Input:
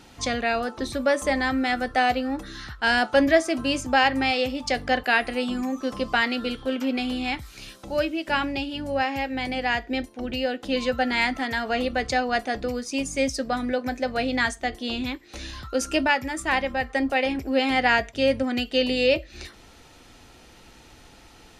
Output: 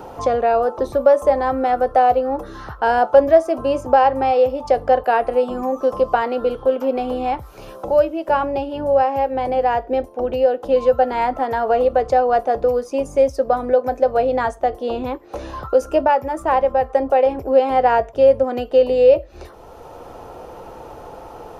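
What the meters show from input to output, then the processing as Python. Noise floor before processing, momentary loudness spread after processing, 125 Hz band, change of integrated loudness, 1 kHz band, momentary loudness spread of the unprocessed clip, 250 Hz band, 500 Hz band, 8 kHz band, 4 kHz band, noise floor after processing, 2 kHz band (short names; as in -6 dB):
-51 dBFS, 11 LU, +3.0 dB, +6.5 dB, +9.0 dB, 9 LU, -1.0 dB, +11.0 dB, n/a, -10.0 dB, -40 dBFS, -6.0 dB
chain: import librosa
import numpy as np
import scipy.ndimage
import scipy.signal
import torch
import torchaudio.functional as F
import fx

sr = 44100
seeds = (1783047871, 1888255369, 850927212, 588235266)

y = fx.graphic_eq(x, sr, hz=(250, 500, 1000, 2000, 4000, 8000), db=(-8, 10, 7, -12, -11, -12))
y = fx.band_squash(y, sr, depth_pct=40)
y = y * 10.0 ** (3.0 / 20.0)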